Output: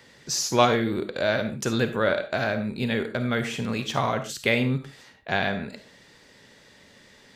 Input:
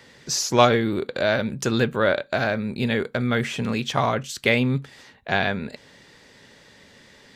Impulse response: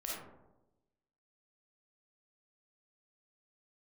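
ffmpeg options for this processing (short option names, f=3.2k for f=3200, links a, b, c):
-filter_complex "[0:a]asplit=2[a][b];[1:a]atrim=start_sample=2205,atrim=end_sample=6615,highshelf=f=6.4k:g=9[c];[b][c]afir=irnorm=-1:irlink=0,volume=-7dB[d];[a][d]amix=inputs=2:normalize=0,volume=-5dB"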